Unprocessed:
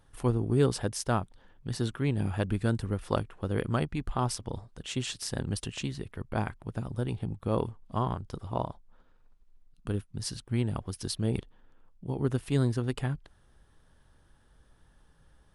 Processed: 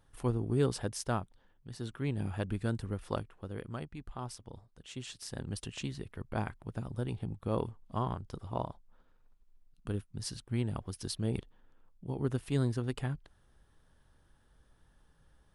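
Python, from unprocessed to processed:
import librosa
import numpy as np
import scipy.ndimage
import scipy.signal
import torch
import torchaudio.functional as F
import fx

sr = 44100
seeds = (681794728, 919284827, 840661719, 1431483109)

y = fx.gain(x, sr, db=fx.line((1.1, -4.5), (1.71, -12.0), (2.04, -5.5), (3.07, -5.5), (3.62, -12.0), (4.76, -12.0), (5.85, -4.0)))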